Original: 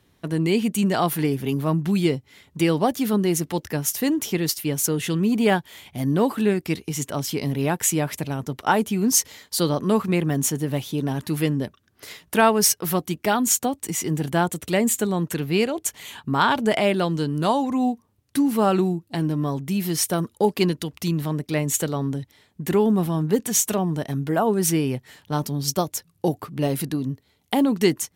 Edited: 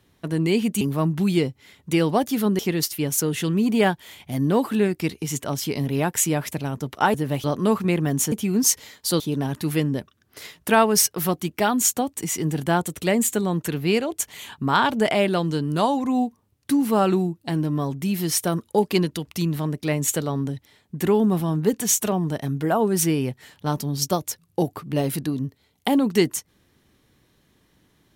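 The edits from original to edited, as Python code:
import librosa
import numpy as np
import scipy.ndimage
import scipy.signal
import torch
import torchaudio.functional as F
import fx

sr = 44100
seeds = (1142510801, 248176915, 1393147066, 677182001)

y = fx.edit(x, sr, fx.cut(start_s=0.81, length_s=0.68),
    fx.cut(start_s=3.27, length_s=0.98),
    fx.swap(start_s=8.8, length_s=0.88, other_s=10.56, other_length_s=0.3), tone=tone)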